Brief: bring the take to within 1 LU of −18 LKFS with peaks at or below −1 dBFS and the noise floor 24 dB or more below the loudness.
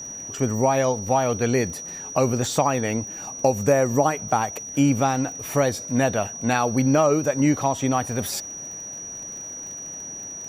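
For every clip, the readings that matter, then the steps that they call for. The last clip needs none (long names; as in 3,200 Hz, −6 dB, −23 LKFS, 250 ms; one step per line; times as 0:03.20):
crackle rate 35 per second; interfering tone 5,800 Hz; level of the tone −33 dBFS; integrated loudness −23.0 LKFS; sample peak −6.5 dBFS; target loudness −18.0 LKFS
→ click removal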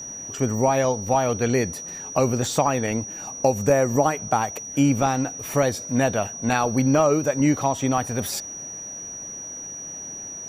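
crackle rate 0.29 per second; interfering tone 5,800 Hz; level of the tone −33 dBFS
→ notch filter 5,800 Hz, Q 30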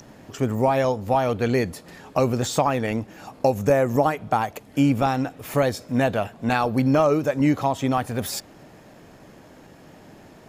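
interfering tone none found; integrated loudness −23.0 LKFS; sample peak −6.5 dBFS; target loudness −18.0 LKFS
→ level +5 dB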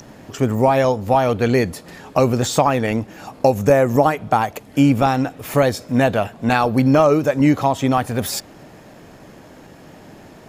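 integrated loudness −18.0 LKFS; sample peak −1.5 dBFS; background noise floor −44 dBFS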